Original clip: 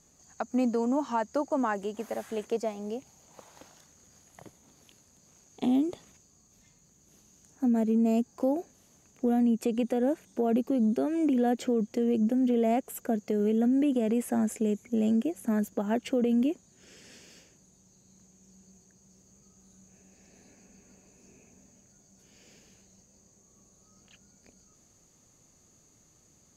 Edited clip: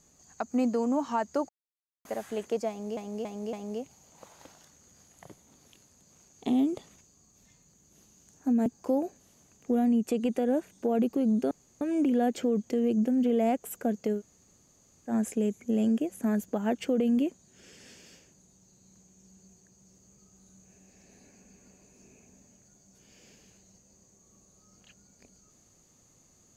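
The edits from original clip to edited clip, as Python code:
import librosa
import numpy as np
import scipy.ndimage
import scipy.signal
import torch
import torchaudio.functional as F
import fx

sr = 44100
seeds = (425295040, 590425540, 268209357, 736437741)

y = fx.edit(x, sr, fx.silence(start_s=1.49, length_s=0.56),
    fx.repeat(start_s=2.69, length_s=0.28, count=4),
    fx.cut(start_s=7.82, length_s=0.38),
    fx.insert_room_tone(at_s=11.05, length_s=0.3),
    fx.room_tone_fill(start_s=13.41, length_s=0.93, crossfade_s=0.1), tone=tone)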